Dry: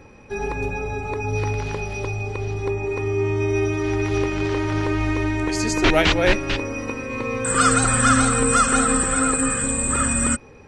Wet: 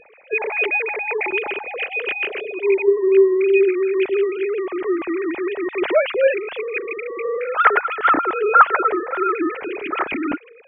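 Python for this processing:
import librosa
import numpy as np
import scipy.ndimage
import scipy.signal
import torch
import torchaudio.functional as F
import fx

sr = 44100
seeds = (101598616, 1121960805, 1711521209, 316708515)

y = fx.sine_speech(x, sr)
y = fx.low_shelf(y, sr, hz=450.0, db=11.0)
y = y * librosa.db_to_amplitude(-2.0)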